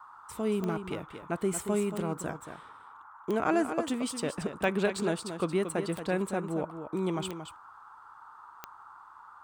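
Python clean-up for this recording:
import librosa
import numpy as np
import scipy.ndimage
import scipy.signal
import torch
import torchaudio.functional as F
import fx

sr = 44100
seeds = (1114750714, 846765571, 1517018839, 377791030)

y = fx.fix_declick_ar(x, sr, threshold=10.0)
y = fx.noise_reduce(y, sr, print_start_s=7.71, print_end_s=8.21, reduce_db=25.0)
y = fx.fix_echo_inverse(y, sr, delay_ms=228, level_db=-9.0)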